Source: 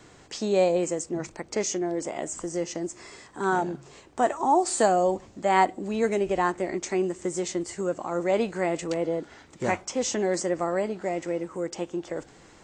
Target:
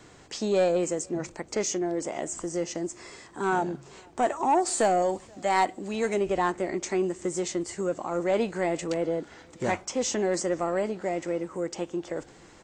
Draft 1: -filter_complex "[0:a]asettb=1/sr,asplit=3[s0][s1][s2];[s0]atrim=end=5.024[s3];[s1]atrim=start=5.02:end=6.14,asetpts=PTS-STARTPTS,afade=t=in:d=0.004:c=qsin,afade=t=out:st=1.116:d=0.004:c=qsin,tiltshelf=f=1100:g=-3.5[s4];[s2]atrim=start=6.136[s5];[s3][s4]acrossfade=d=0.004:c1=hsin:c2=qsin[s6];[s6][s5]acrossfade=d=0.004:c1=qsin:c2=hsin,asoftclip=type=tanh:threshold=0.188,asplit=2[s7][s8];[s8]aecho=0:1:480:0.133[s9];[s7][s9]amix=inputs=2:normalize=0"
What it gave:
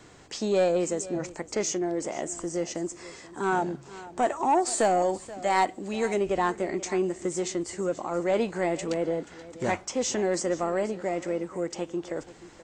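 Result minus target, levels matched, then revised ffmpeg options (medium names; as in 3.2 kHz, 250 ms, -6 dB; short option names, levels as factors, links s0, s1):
echo-to-direct +12 dB
-filter_complex "[0:a]asettb=1/sr,asplit=3[s0][s1][s2];[s0]atrim=end=5.024[s3];[s1]atrim=start=5.02:end=6.14,asetpts=PTS-STARTPTS,afade=t=in:d=0.004:c=qsin,afade=t=out:st=1.116:d=0.004:c=qsin,tiltshelf=f=1100:g=-3.5[s4];[s2]atrim=start=6.136[s5];[s3][s4]acrossfade=d=0.004:c1=hsin:c2=qsin[s6];[s6][s5]acrossfade=d=0.004:c1=qsin:c2=hsin,asoftclip=type=tanh:threshold=0.188,asplit=2[s7][s8];[s8]aecho=0:1:480:0.0335[s9];[s7][s9]amix=inputs=2:normalize=0"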